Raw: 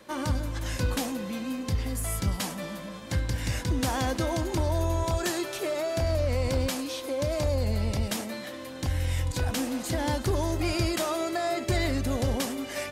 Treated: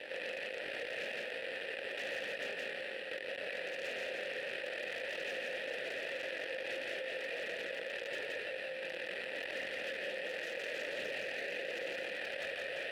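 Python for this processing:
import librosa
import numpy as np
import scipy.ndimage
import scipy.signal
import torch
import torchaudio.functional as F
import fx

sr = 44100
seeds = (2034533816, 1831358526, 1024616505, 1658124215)

p1 = fx.halfwave_hold(x, sr)
p2 = np.diff(p1, prepend=0.0)
p3 = p2 + 0.36 * np.pad(p2, (int(2.0 * sr / 1000.0), 0))[:len(p2)]
p4 = fx.sample_hold(p3, sr, seeds[0], rate_hz=6600.0, jitter_pct=0)
p5 = fx.chorus_voices(p4, sr, voices=4, hz=0.35, base_ms=20, depth_ms=3.2, mix_pct=45)
p6 = (np.mod(10.0 ** (28.0 / 20.0) * p5 + 1.0, 2.0) - 1.0) / 10.0 ** (28.0 / 20.0)
p7 = fx.vowel_filter(p6, sr, vowel='e')
p8 = p7 + fx.echo_single(p7, sr, ms=169, db=-3.5, dry=0)
p9 = fx.env_flatten(p8, sr, amount_pct=70)
y = F.gain(torch.from_numpy(p9), 7.5).numpy()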